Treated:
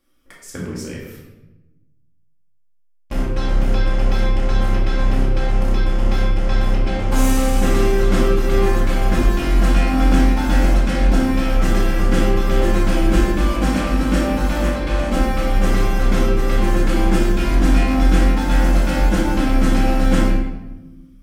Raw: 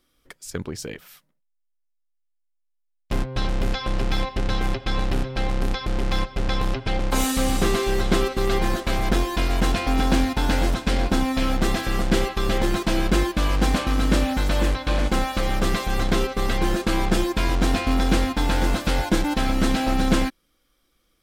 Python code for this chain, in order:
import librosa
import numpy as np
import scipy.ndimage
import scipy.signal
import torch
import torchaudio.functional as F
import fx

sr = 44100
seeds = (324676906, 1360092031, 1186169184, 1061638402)

y = fx.peak_eq(x, sr, hz=3900.0, db=-6.5, octaves=0.49)
y = fx.room_shoebox(y, sr, seeds[0], volume_m3=480.0, walls='mixed', distance_m=2.3)
y = y * librosa.db_to_amplitude(-3.5)